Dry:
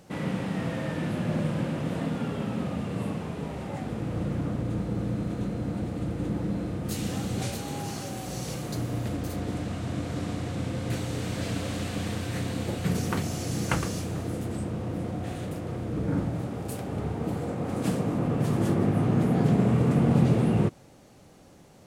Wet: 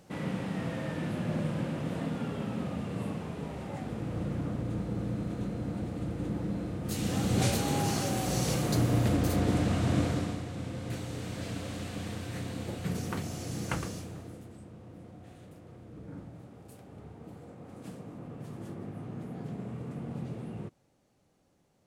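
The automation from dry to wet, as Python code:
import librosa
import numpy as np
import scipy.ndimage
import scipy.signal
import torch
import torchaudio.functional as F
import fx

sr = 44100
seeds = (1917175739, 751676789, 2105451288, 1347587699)

y = fx.gain(x, sr, db=fx.line((6.8, -4.0), (7.46, 4.5), (10.03, 4.5), (10.46, -6.5), (13.85, -6.5), (14.55, -17.0)))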